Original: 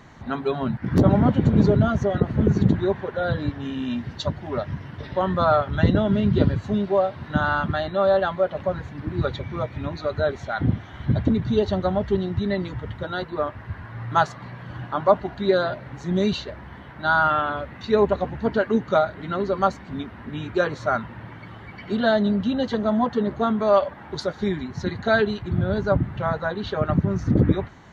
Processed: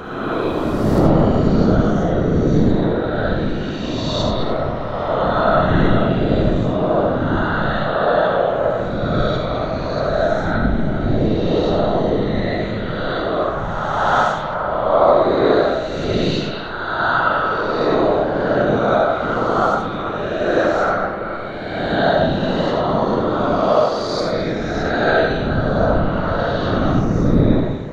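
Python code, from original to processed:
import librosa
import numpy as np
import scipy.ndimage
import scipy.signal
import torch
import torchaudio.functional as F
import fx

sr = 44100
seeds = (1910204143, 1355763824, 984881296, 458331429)

p1 = fx.spec_swells(x, sr, rise_s=1.92)
p2 = fx.rider(p1, sr, range_db=10, speed_s=2.0)
p3 = p1 + (p2 * librosa.db_to_amplitude(-2.0))
p4 = fx.whisperise(p3, sr, seeds[0])
p5 = p4 + fx.echo_stepped(p4, sr, ms=213, hz=3000.0, octaves=-1.4, feedback_pct=70, wet_db=-5.0, dry=0)
p6 = fx.rev_freeverb(p5, sr, rt60_s=0.81, hf_ratio=0.35, predelay_ms=30, drr_db=0.5)
p7 = fx.band_squash(p6, sr, depth_pct=40, at=(26.38, 27.05))
y = p7 * librosa.db_to_amplitude(-8.0)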